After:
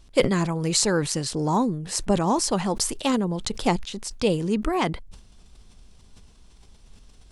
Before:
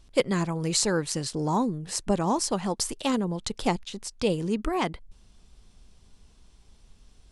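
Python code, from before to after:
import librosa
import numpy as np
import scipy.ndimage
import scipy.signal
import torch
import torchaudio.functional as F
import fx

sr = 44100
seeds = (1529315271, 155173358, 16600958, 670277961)

y = fx.sustainer(x, sr, db_per_s=100.0)
y = y * librosa.db_to_amplitude(3.0)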